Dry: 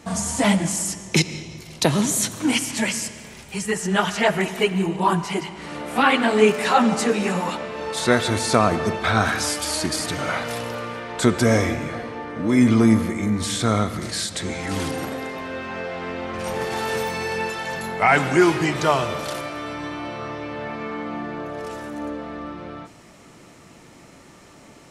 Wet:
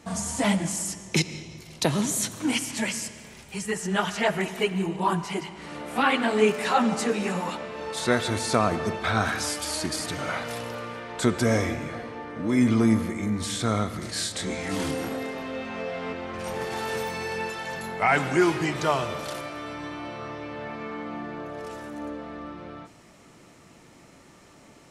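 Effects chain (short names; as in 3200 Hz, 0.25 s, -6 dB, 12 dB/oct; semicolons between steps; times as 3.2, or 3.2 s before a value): 14.13–16.13 doubler 27 ms -2 dB; gain -5 dB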